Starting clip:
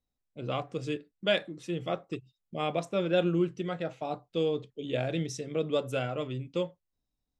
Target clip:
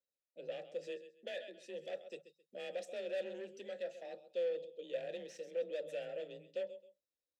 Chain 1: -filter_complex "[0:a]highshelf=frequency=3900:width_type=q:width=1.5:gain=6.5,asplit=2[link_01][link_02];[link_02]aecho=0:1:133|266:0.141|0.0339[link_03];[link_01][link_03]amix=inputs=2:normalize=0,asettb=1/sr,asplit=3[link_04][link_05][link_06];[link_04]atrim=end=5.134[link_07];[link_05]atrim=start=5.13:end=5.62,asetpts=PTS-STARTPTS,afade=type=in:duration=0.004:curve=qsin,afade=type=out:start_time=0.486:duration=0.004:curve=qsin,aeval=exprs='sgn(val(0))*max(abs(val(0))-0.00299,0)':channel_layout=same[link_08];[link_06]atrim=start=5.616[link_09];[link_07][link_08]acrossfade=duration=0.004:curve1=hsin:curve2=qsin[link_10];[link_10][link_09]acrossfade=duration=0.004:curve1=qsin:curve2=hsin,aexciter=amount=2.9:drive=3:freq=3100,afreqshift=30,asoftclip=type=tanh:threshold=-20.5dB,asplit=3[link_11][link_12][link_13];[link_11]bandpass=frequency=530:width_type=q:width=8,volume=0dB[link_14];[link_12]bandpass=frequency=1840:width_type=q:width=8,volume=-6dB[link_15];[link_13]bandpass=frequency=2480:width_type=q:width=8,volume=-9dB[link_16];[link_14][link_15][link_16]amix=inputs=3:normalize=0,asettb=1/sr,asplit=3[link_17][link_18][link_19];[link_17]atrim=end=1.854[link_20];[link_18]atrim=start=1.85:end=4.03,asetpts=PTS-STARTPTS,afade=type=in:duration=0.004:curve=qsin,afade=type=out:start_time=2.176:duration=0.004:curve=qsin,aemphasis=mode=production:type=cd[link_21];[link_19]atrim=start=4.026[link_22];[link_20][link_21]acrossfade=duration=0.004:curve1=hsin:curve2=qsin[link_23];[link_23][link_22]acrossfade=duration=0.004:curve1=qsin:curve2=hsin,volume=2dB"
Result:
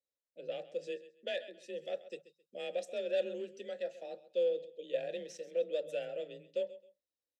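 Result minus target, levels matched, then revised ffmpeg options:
soft clipping: distortion −9 dB
-filter_complex "[0:a]highshelf=frequency=3900:width_type=q:width=1.5:gain=6.5,asplit=2[link_01][link_02];[link_02]aecho=0:1:133|266:0.141|0.0339[link_03];[link_01][link_03]amix=inputs=2:normalize=0,asettb=1/sr,asplit=3[link_04][link_05][link_06];[link_04]atrim=end=5.134[link_07];[link_05]atrim=start=5.13:end=5.62,asetpts=PTS-STARTPTS,afade=type=in:duration=0.004:curve=qsin,afade=type=out:start_time=0.486:duration=0.004:curve=qsin,aeval=exprs='sgn(val(0))*max(abs(val(0))-0.00299,0)':channel_layout=same[link_08];[link_06]atrim=start=5.616[link_09];[link_07][link_08]acrossfade=duration=0.004:curve1=hsin:curve2=qsin[link_10];[link_10][link_09]acrossfade=duration=0.004:curve1=qsin:curve2=hsin,aexciter=amount=2.9:drive=3:freq=3100,afreqshift=30,asoftclip=type=tanh:threshold=-31dB,asplit=3[link_11][link_12][link_13];[link_11]bandpass=frequency=530:width_type=q:width=8,volume=0dB[link_14];[link_12]bandpass=frequency=1840:width_type=q:width=8,volume=-6dB[link_15];[link_13]bandpass=frequency=2480:width_type=q:width=8,volume=-9dB[link_16];[link_14][link_15][link_16]amix=inputs=3:normalize=0,asettb=1/sr,asplit=3[link_17][link_18][link_19];[link_17]atrim=end=1.854[link_20];[link_18]atrim=start=1.85:end=4.03,asetpts=PTS-STARTPTS,afade=type=in:duration=0.004:curve=qsin,afade=type=out:start_time=2.176:duration=0.004:curve=qsin,aemphasis=mode=production:type=cd[link_21];[link_19]atrim=start=4.026[link_22];[link_20][link_21]acrossfade=duration=0.004:curve1=hsin:curve2=qsin[link_23];[link_23][link_22]acrossfade=duration=0.004:curve1=qsin:curve2=hsin,volume=2dB"

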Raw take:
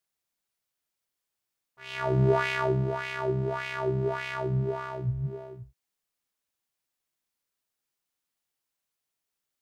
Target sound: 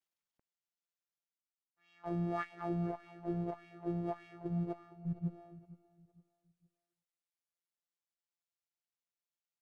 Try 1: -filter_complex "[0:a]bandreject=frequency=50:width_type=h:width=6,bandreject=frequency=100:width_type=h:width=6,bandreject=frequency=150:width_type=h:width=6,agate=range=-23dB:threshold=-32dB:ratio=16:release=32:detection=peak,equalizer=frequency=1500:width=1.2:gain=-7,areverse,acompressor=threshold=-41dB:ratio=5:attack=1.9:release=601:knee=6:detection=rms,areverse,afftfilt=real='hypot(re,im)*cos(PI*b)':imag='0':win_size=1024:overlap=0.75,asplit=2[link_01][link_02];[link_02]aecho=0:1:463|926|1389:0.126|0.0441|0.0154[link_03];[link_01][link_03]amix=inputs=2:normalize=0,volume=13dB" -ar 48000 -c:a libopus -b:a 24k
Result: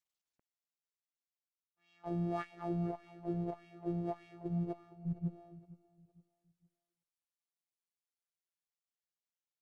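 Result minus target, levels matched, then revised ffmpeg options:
2,000 Hz band −4.5 dB
-filter_complex "[0:a]bandreject=frequency=50:width_type=h:width=6,bandreject=frequency=100:width_type=h:width=6,bandreject=frequency=150:width_type=h:width=6,agate=range=-23dB:threshold=-32dB:ratio=16:release=32:detection=peak,areverse,acompressor=threshold=-41dB:ratio=5:attack=1.9:release=601:knee=6:detection=rms,areverse,afftfilt=real='hypot(re,im)*cos(PI*b)':imag='0':win_size=1024:overlap=0.75,asplit=2[link_01][link_02];[link_02]aecho=0:1:463|926|1389:0.126|0.0441|0.0154[link_03];[link_01][link_03]amix=inputs=2:normalize=0,volume=13dB" -ar 48000 -c:a libopus -b:a 24k

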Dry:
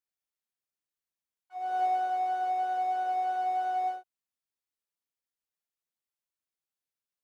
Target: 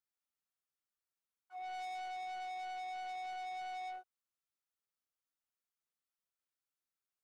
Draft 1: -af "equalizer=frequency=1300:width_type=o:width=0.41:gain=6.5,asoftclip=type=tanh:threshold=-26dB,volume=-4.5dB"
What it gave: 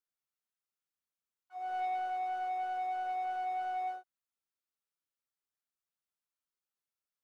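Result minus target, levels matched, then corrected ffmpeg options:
soft clipping: distortion −10 dB
-af "equalizer=frequency=1300:width_type=o:width=0.41:gain=6.5,asoftclip=type=tanh:threshold=-37.5dB,volume=-4.5dB"

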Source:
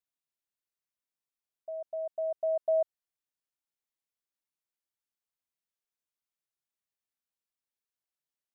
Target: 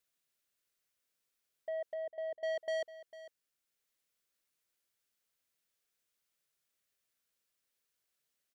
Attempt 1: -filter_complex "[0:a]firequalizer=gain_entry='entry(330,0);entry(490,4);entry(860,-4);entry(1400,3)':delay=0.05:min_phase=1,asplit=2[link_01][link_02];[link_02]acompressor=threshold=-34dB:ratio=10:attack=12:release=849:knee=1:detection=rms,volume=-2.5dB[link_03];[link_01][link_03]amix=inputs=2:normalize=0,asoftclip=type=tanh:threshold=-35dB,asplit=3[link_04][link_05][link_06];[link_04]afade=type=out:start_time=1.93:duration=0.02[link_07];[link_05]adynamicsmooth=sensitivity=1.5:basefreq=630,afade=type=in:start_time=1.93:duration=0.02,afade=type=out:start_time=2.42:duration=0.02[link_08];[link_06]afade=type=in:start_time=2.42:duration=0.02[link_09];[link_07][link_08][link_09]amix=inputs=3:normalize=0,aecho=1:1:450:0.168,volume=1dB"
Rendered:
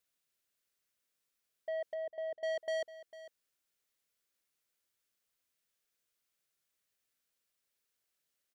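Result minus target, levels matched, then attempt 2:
downward compressor: peak gain reduction −8.5 dB
-filter_complex "[0:a]firequalizer=gain_entry='entry(330,0);entry(490,4);entry(860,-4);entry(1400,3)':delay=0.05:min_phase=1,asplit=2[link_01][link_02];[link_02]acompressor=threshold=-43.5dB:ratio=10:attack=12:release=849:knee=1:detection=rms,volume=-2.5dB[link_03];[link_01][link_03]amix=inputs=2:normalize=0,asoftclip=type=tanh:threshold=-35dB,asplit=3[link_04][link_05][link_06];[link_04]afade=type=out:start_time=1.93:duration=0.02[link_07];[link_05]adynamicsmooth=sensitivity=1.5:basefreq=630,afade=type=in:start_time=1.93:duration=0.02,afade=type=out:start_time=2.42:duration=0.02[link_08];[link_06]afade=type=in:start_time=2.42:duration=0.02[link_09];[link_07][link_08][link_09]amix=inputs=3:normalize=0,aecho=1:1:450:0.168,volume=1dB"

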